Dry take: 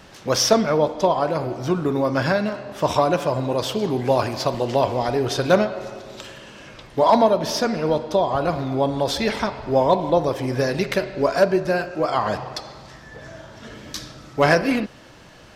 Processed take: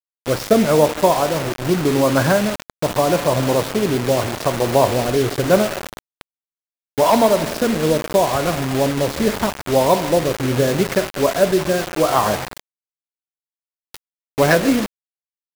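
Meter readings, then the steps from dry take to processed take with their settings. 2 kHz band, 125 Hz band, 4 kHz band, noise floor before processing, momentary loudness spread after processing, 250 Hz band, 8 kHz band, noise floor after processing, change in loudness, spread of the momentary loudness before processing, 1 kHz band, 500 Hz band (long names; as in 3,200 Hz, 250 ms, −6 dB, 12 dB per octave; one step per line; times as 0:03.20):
+3.0 dB, +4.0 dB, +2.0 dB, −45 dBFS, 8 LU, +4.0 dB, +4.5 dB, below −85 dBFS, +3.0 dB, 17 LU, +1.5 dB, +3.0 dB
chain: running median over 15 samples
rotating-speaker cabinet horn 0.8 Hz, later 6.7 Hz, at 0:12.65
bit reduction 5 bits
level +5.5 dB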